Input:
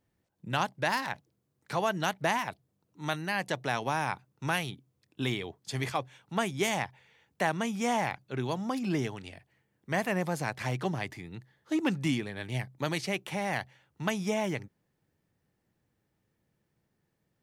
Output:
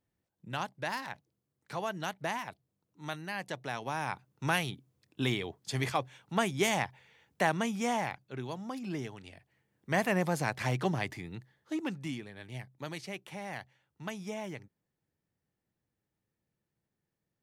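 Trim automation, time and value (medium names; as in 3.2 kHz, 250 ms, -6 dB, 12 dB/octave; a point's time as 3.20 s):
3.80 s -6.5 dB
4.44 s +0.5 dB
7.54 s +0.5 dB
8.47 s -7 dB
9.10 s -7 dB
9.99 s +1 dB
11.28 s +1 dB
12.00 s -9 dB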